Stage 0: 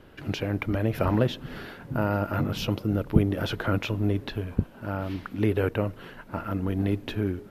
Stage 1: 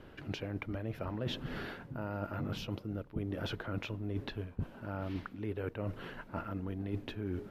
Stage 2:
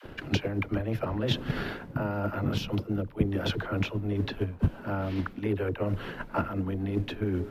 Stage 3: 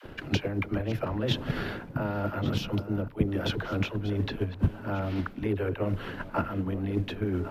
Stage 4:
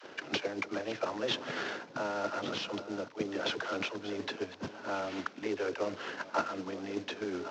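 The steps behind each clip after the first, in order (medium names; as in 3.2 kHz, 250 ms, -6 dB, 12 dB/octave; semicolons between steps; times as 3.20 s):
treble shelf 7.3 kHz -8.5 dB; reverse; compression 12:1, threshold -32 dBFS, peak gain reduction 20.5 dB; reverse; trim -1.5 dB
phase dispersion lows, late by 54 ms, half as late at 380 Hz; transient shaper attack +7 dB, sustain 0 dB; trim +7 dB
chunks repeated in reverse 630 ms, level -14 dB
CVSD coder 32 kbps; high-pass 410 Hz 12 dB/octave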